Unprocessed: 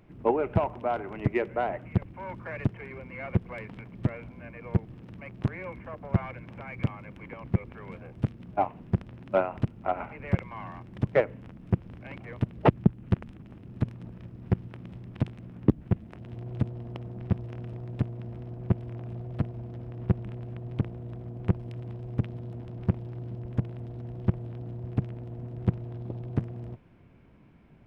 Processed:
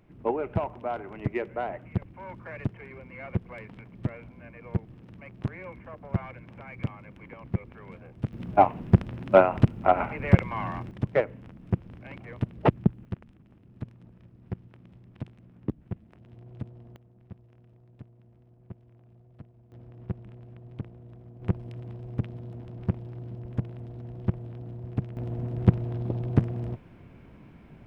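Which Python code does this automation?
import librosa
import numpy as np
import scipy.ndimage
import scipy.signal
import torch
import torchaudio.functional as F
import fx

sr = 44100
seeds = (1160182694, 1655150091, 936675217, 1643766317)

y = fx.gain(x, sr, db=fx.steps((0.0, -3.0), (8.33, 8.0), (10.91, -1.0), (13.05, -9.5), (16.96, -18.5), (19.72, -8.5), (21.42, -1.5), (25.17, 6.5)))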